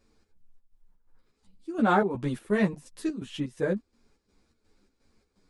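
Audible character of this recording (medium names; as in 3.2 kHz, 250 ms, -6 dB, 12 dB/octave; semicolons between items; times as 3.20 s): chopped level 2.8 Hz, depth 60%, duty 65%; a shimmering, thickened sound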